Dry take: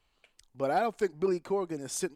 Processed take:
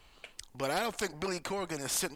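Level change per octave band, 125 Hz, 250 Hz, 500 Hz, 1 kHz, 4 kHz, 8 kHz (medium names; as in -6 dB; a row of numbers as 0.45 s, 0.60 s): -1.0 dB, -5.0 dB, -6.5 dB, -4.0 dB, +8.5 dB, +4.0 dB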